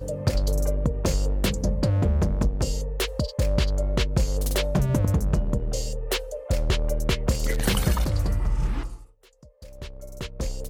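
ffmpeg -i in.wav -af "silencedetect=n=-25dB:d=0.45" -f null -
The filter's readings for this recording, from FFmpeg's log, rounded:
silence_start: 8.87
silence_end: 10.21 | silence_duration: 1.34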